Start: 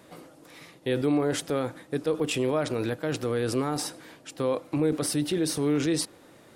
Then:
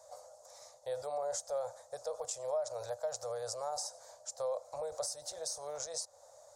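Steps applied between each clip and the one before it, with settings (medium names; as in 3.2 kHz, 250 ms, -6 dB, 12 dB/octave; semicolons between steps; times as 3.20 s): FFT filter 100 Hz 0 dB, 200 Hz -29 dB, 360 Hz -21 dB, 600 Hz +3 dB, 870 Hz 0 dB, 2.8 kHz -22 dB, 4.3 kHz -1 dB, 6.7 kHz +12 dB, 11 kHz -5 dB; compression 6:1, threshold -32 dBFS, peak gain reduction 10 dB; resonant low shelf 420 Hz -8.5 dB, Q 3; trim -5 dB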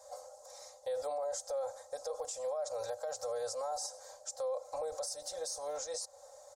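comb 3.8 ms, depth 81%; peak limiter -31 dBFS, peak gain reduction 8 dB; trim +1 dB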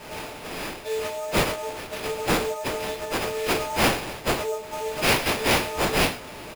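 partials quantised in pitch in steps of 6 st; reverse bouncing-ball echo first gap 20 ms, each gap 1.15×, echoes 5; sample-rate reducer 7.5 kHz, jitter 20%; trim +5 dB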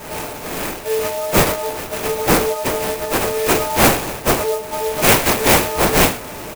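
sampling jitter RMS 0.065 ms; trim +8.5 dB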